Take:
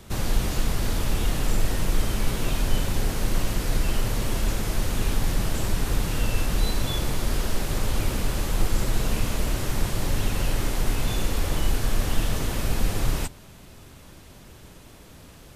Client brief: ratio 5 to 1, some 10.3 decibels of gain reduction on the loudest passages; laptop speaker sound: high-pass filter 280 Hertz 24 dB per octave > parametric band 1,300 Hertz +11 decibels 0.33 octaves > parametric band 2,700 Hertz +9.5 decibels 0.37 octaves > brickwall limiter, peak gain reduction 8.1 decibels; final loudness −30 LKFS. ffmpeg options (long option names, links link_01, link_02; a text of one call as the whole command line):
ffmpeg -i in.wav -af "acompressor=threshold=-27dB:ratio=5,highpass=frequency=280:width=0.5412,highpass=frequency=280:width=1.3066,equalizer=frequency=1300:width_type=o:width=0.33:gain=11,equalizer=frequency=2700:width_type=o:width=0.37:gain=9.5,volume=10dB,alimiter=limit=-21.5dB:level=0:latency=1" out.wav